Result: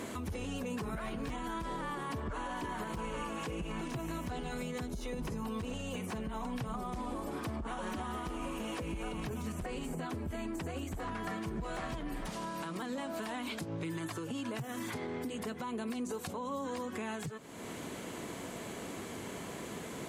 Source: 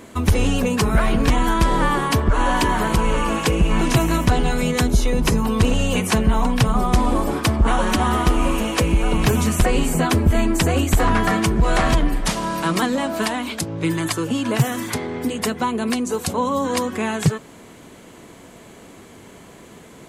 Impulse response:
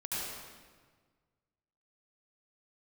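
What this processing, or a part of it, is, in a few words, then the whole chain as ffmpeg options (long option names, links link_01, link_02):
podcast mastering chain: -af "highpass=frequency=85:poles=1,deesser=0.6,acompressor=threshold=-37dB:ratio=2.5,alimiter=level_in=7dB:limit=-24dB:level=0:latency=1:release=189,volume=-7dB,volume=1.5dB" -ar 44100 -c:a libmp3lame -b:a 112k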